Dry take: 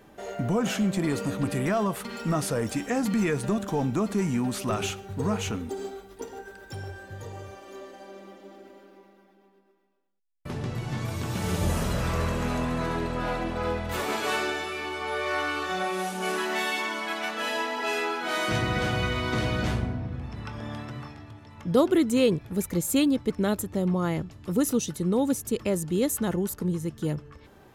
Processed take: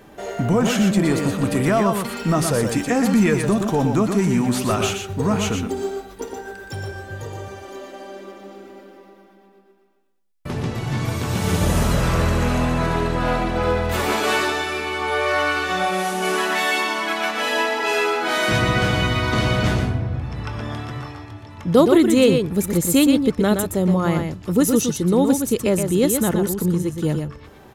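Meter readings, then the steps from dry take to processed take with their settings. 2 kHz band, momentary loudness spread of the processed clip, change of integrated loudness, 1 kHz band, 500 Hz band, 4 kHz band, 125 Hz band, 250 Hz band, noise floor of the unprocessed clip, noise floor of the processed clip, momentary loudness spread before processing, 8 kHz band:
+8.0 dB, 15 LU, +8.0 dB, +8.0 dB, +8.0 dB, +8.0 dB, +8.0 dB, +8.0 dB, -56 dBFS, -47 dBFS, 15 LU, +8.0 dB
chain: delay 120 ms -6 dB; trim +7 dB

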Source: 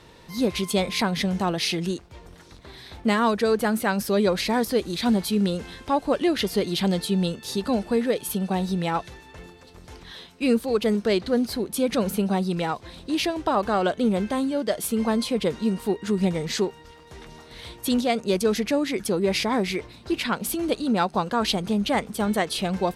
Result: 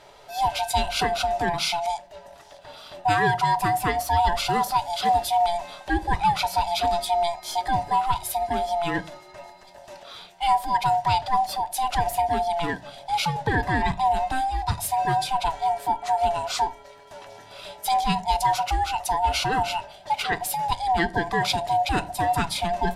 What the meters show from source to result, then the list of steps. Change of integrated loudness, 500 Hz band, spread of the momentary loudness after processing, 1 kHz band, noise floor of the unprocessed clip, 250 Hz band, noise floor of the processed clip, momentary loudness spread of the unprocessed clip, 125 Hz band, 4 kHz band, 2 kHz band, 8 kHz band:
0.0 dB, -5.0 dB, 8 LU, +9.0 dB, -49 dBFS, -11.0 dB, -48 dBFS, 7 LU, -1.5 dB, 0.0 dB, +2.5 dB, 0.0 dB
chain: split-band scrambler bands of 500 Hz; peaking EQ 260 Hz -3.5 dB 0.66 oct; simulated room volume 290 m³, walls furnished, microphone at 0.34 m

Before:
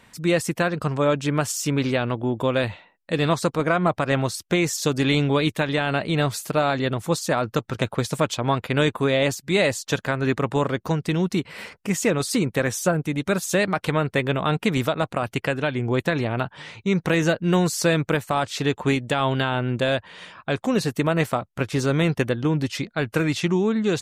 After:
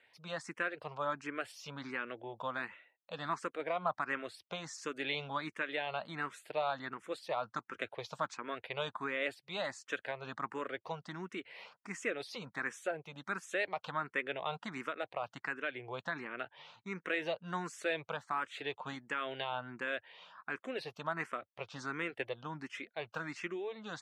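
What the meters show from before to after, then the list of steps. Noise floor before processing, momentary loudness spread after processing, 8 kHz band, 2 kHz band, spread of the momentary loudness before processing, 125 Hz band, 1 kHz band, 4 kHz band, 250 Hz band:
-60 dBFS, 8 LU, -22.5 dB, -11.5 dB, 5 LU, -27.0 dB, -12.0 dB, -15.5 dB, -23.0 dB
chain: low-pass 1.5 kHz 12 dB/octave; differentiator; barber-pole phaser +1.4 Hz; trim +9 dB

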